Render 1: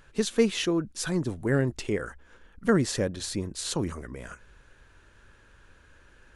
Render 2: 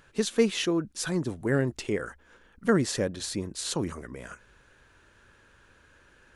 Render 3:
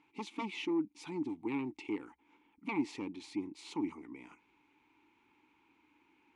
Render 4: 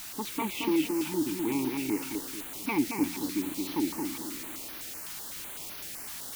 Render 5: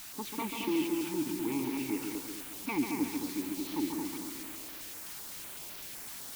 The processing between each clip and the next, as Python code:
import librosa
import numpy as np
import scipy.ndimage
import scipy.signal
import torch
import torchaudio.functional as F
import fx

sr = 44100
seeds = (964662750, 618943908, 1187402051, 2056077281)

y1 = fx.low_shelf(x, sr, hz=61.0, db=-11.5)
y2 = fx.fold_sine(y1, sr, drive_db=10, ceiling_db=-10.0)
y2 = fx.vowel_filter(y2, sr, vowel='u')
y2 = fx.tilt_shelf(y2, sr, db=-3.5, hz=830.0)
y2 = F.gain(torch.from_numpy(y2), -8.0).numpy()
y3 = fx.quant_dither(y2, sr, seeds[0], bits=8, dither='triangular')
y3 = fx.echo_feedback(y3, sr, ms=223, feedback_pct=39, wet_db=-4.0)
y3 = fx.filter_held_notch(y3, sr, hz=7.9, low_hz=480.0, high_hz=7800.0)
y3 = F.gain(torch.from_numpy(y3), 6.5).numpy()
y4 = y3 + 10.0 ** (-6.0 / 20.0) * np.pad(y3, (int(139 * sr / 1000.0), 0))[:len(y3)]
y4 = F.gain(torch.from_numpy(y4), -4.5).numpy()